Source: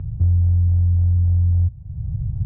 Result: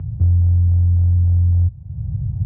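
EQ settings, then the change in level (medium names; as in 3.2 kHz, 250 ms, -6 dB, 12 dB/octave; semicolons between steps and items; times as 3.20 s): high-pass 61 Hz; distance through air 70 m; +3.0 dB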